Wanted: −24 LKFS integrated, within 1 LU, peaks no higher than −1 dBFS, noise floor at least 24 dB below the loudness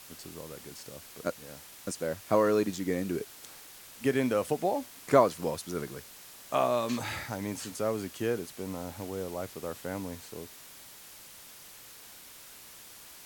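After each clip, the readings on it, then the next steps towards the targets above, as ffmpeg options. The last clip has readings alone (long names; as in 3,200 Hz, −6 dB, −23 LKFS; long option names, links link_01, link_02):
background noise floor −50 dBFS; target noise floor −56 dBFS; integrated loudness −31.5 LKFS; sample peak −7.5 dBFS; target loudness −24.0 LKFS
→ -af "afftdn=noise_reduction=6:noise_floor=-50"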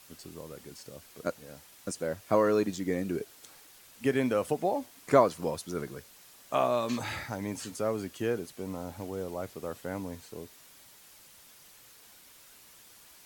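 background noise floor −56 dBFS; integrated loudness −31.5 LKFS; sample peak −7.5 dBFS; target loudness −24.0 LKFS
→ -af "volume=7.5dB,alimiter=limit=-1dB:level=0:latency=1"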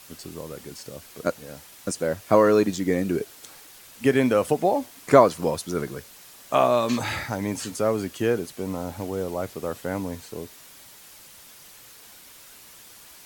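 integrated loudness −24.0 LKFS; sample peak −1.0 dBFS; background noise floor −48 dBFS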